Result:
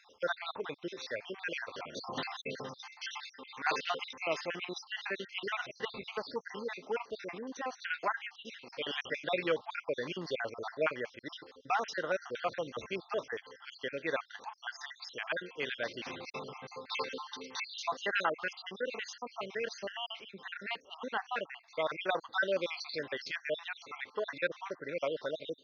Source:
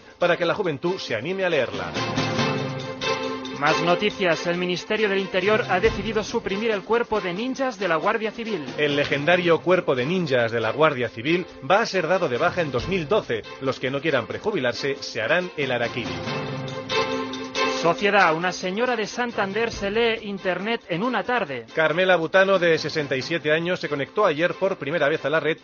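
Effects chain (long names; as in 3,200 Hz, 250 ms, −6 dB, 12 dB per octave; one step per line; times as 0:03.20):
time-frequency cells dropped at random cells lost 58%
high-pass filter 570 Hz 6 dB per octave
level −8.5 dB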